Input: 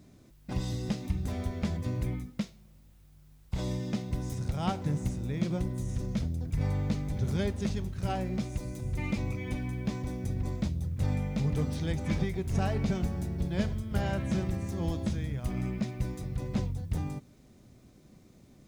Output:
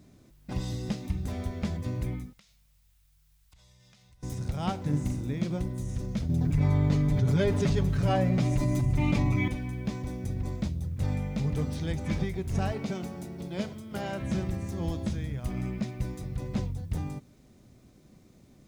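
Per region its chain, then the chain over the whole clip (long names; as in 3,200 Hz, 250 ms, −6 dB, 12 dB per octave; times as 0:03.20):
0:02.33–0:04.23: guitar amp tone stack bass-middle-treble 10-0-10 + downward compressor 12 to 1, threshold −55 dBFS
0:04.89–0:05.34: parametric band 280 Hz +8.5 dB 0.31 octaves + flutter between parallel walls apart 7 metres, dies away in 0.36 s
0:06.29–0:09.48: high-shelf EQ 3,700 Hz −7.5 dB + comb filter 7 ms, depth 95% + envelope flattener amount 70%
0:12.72–0:14.21: high-pass filter 200 Hz + notch filter 1,700 Hz, Q 11
whole clip: no processing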